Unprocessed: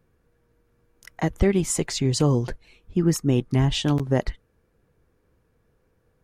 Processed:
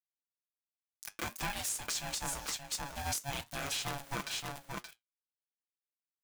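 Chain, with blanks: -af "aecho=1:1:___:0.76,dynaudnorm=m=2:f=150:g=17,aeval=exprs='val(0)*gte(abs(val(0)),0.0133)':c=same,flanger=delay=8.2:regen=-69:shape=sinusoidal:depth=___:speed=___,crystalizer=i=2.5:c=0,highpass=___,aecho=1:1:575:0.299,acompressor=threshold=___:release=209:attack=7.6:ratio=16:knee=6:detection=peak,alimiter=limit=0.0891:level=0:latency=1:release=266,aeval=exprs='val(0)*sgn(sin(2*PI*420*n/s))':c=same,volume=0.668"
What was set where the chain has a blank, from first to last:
6.8, 1.7, 1.4, 580, 0.0562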